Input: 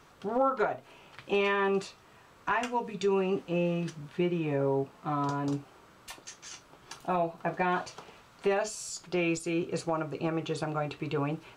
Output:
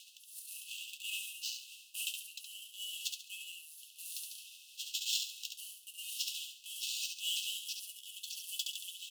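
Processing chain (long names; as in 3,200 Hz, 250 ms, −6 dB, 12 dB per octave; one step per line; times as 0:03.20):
pitch glide at a constant tempo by −3 semitones ending unshifted
sample-rate reduction 8,600 Hz, jitter 20%
reversed playback
downward compressor 6 to 1, threshold −42 dBFS, peak gain reduction 17.5 dB
reversed playback
linear-phase brick-wall high-pass 2,000 Hz
speed change +27%
rotating-speaker cabinet horn 0.9 Hz
on a send: repeating echo 69 ms, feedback 33%, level −5 dB
on the sum: level +15.5 dB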